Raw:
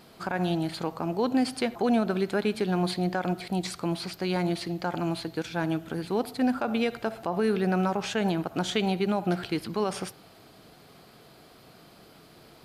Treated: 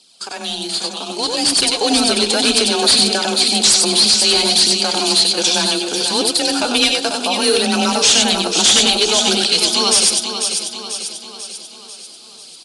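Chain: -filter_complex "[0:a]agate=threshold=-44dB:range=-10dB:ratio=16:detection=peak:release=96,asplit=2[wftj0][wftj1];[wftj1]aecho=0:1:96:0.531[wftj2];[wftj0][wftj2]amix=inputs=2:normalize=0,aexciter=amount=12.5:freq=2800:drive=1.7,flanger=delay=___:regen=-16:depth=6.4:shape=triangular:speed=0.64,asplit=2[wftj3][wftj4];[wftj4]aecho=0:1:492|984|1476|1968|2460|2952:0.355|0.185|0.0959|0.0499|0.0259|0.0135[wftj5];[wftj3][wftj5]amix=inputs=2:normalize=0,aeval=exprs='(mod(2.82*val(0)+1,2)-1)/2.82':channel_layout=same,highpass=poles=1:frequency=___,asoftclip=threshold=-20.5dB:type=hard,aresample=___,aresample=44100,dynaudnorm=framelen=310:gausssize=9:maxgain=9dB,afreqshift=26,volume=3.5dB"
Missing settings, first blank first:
0.2, 300, 22050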